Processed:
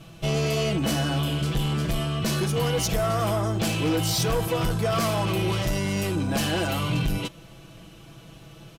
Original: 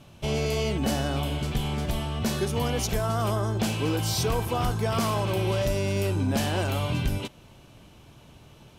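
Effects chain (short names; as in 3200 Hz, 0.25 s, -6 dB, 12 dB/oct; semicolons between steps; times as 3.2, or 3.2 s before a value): notch 910 Hz, Q 6.7; comb 6.1 ms, depth 82%; soft clip -21.5 dBFS, distortion -14 dB; gain +3 dB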